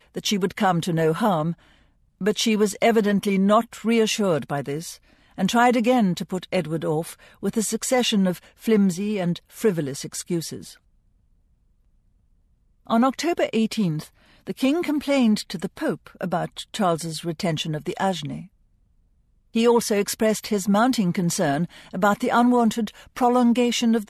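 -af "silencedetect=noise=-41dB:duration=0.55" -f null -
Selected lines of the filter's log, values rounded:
silence_start: 1.54
silence_end: 2.21 | silence_duration: 0.67
silence_start: 10.74
silence_end: 12.87 | silence_duration: 2.13
silence_start: 18.46
silence_end: 19.55 | silence_duration: 1.09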